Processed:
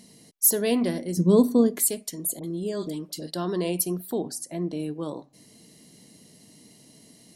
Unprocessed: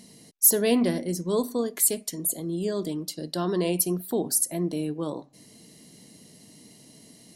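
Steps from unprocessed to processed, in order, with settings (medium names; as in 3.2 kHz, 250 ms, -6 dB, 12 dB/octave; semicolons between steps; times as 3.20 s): 1.17–1.84 s: peaking EQ 170 Hz +13.5 dB 2.9 oct; 2.39–3.31 s: phase dispersion highs, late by 47 ms, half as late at 910 Hz; 4.18–4.80 s: distance through air 71 m; trim -1.5 dB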